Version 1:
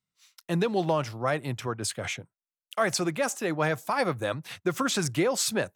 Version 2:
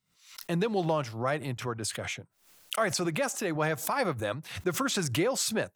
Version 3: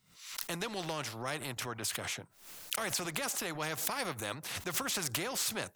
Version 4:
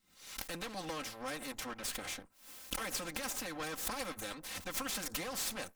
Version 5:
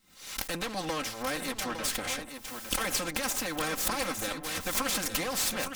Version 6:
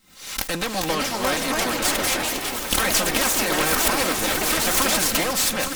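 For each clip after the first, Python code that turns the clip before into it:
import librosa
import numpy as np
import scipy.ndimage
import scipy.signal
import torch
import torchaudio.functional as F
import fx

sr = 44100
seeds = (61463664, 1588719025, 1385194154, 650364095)

y1 = fx.pre_swell(x, sr, db_per_s=110.0)
y1 = y1 * 10.0 ** (-2.5 / 20.0)
y2 = fx.spectral_comp(y1, sr, ratio=2.0)
y3 = fx.lower_of_two(y2, sr, delay_ms=3.8)
y3 = y3 * 10.0 ** (-2.0 / 20.0)
y4 = y3 + 10.0 ** (-8.0 / 20.0) * np.pad(y3, (int(859 * sr / 1000.0), 0))[:len(y3)]
y4 = y4 * 10.0 ** (8.0 / 20.0)
y5 = fx.echo_split(y4, sr, split_hz=500.0, low_ms=534, high_ms=247, feedback_pct=52, wet_db=-12.5)
y5 = fx.echo_pitch(y5, sr, ms=488, semitones=3, count=3, db_per_echo=-3.0)
y5 = y5 * 10.0 ** (8.0 / 20.0)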